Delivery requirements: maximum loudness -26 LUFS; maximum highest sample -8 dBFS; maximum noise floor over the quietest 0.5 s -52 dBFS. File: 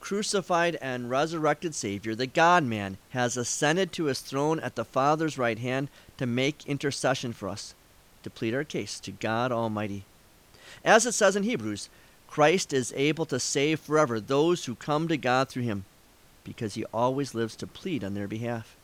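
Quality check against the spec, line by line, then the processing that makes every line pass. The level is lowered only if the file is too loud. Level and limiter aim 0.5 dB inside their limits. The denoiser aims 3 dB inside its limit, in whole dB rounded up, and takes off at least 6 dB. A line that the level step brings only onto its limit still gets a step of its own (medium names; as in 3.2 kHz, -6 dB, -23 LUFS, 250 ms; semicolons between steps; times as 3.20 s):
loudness -27.5 LUFS: pass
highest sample -7.0 dBFS: fail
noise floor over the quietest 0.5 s -57 dBFS: pass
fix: peak limiter -8.5 dBFS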